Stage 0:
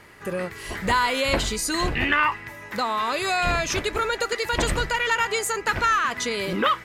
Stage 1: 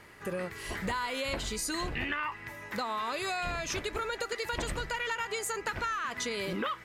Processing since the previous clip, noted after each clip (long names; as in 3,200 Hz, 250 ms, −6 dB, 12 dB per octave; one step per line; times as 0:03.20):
downward compressor, threshold −26 dBFS, peak gain reduction 9.5 dB
level −4.5 dB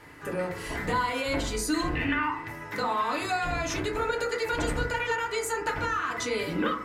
feedback delay network reverb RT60 0.53 s, low-frequency decay 1.3×, high-frequency decay 0.3×, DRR −2.5 dB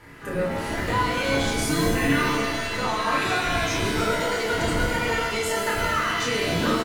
sub-octave generator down 1 octave, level −1 dB
double-tracking delay 29 ms −4.5 dB
reverb with rising layers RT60 1.5 s, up +7 semitones, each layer −2 dB, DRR 2.5 dB